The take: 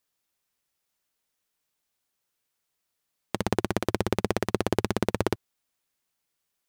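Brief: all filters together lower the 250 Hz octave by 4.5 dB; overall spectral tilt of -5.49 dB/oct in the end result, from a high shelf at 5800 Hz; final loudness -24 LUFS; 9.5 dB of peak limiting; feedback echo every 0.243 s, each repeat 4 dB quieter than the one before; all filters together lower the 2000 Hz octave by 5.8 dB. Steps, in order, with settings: bell 250 Hz -6.5 dB; bell 2000 Hz -7 dB; high shelf 5800 Hz -4 dB; limiter -18.5 dBFS; feedback echo 0.243 s, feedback 63%, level -4 dB; gain +14.5 dB

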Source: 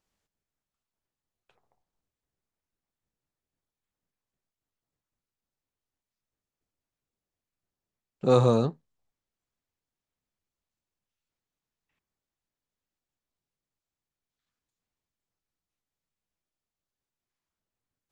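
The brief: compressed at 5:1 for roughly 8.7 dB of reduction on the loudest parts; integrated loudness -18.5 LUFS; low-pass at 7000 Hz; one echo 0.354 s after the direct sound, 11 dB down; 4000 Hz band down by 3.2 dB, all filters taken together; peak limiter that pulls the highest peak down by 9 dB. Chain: LPF 7000 Hz; bell 4000 Hz -3 dB; compressor 5:1, threshold -25 dBFS; limiter -25 dBFS; echo 0.354 s -11 dB; gain +18.5 dB

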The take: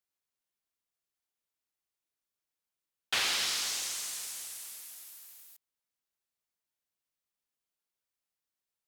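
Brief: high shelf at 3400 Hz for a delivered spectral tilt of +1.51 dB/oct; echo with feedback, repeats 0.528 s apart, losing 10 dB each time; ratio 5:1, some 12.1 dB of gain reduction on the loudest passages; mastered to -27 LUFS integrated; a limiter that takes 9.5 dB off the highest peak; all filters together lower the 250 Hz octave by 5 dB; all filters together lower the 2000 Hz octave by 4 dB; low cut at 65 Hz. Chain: HPF 65 Hz; bell 250 Hz -7 dB; bell 2000 Hz -3.5 dB; high shelf 3400 Hz -4.5 dB; compressor 5:1, threshold -43 dBFS; limiter -38 dBFS; feedback echo 0.528 s, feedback 32%, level -10 dB; gain +19.5 dB

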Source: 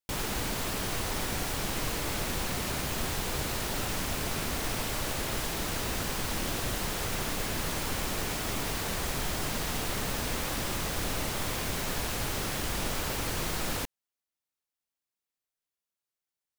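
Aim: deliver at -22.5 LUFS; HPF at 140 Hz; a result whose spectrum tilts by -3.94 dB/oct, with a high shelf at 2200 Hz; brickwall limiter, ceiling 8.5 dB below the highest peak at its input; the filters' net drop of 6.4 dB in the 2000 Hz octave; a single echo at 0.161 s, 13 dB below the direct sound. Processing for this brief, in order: HPF 140 Hz; bell 2000 Hz -3.5 dB; high shelf 2200 Hz -8.5 dB; limiter -32 dBFS; echo 0.161 s -13 dB; gain +18 dB

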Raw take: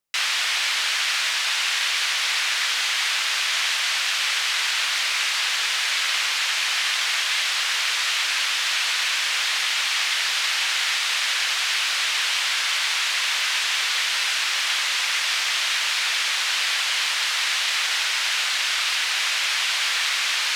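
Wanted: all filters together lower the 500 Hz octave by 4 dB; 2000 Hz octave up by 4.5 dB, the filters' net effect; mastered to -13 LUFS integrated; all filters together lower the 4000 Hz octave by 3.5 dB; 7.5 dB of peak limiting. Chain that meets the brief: bell 500 Hz -6 dB; bell 2000 Hz +8 dB; bell 4000 Hz -8 dB; gain +10 dB; limiter -6 dBFS

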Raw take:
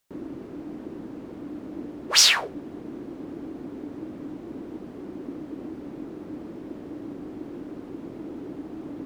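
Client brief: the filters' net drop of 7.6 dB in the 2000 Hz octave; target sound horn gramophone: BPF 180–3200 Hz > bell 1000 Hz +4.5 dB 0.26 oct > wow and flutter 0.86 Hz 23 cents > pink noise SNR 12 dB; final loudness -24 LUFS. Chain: BPF 180–3200 Hz; bell 1000 Hz +4.5 dB 0.26 oct; bell 2000 Hz -9 dB; wow and flutter 0.86 Hz 23 cents; pink noise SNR 12 dB; gain +11 dB

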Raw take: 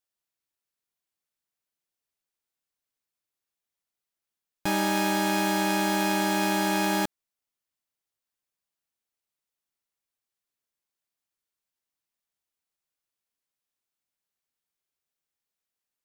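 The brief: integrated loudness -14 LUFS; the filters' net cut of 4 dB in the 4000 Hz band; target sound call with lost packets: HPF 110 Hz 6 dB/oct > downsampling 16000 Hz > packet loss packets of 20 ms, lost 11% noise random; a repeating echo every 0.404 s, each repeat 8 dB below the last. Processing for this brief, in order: HPF 110 Hz 6 dB/oct; bell 4000 Hz -5 dB; feedback echo 0.404 s, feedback 40%, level -8 dB; downsampling 16000 Hz; packet loss packets of 20 ms, lost 11% noise random; gain +13 dB

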